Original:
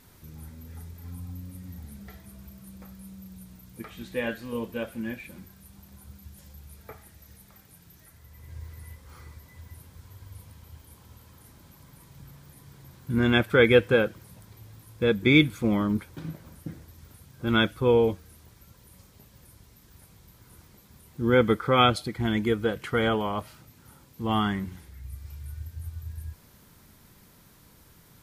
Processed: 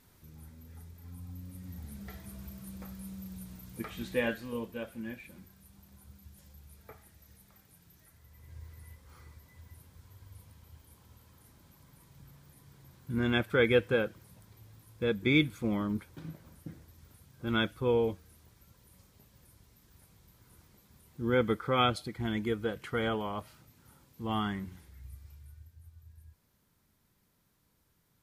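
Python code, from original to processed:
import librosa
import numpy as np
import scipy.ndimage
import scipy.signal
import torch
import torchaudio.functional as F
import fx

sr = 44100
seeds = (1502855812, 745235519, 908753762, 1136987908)

y = fx.gain(x, sr, db=fx.line((1.09, -7.5), (2.25, 1.0), (4.09, 1.0), (4.74, -7.0), (25.04, -7.0), (25.78, -17.0)))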